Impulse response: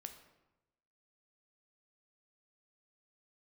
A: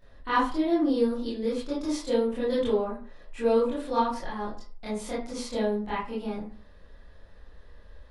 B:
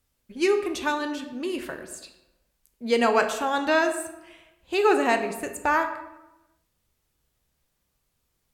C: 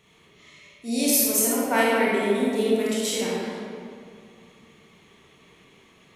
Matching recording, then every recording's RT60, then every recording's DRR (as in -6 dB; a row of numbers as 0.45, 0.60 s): B; 0.45, 1.0, 2.3 s; -10.0, 6.0, -7.0 dB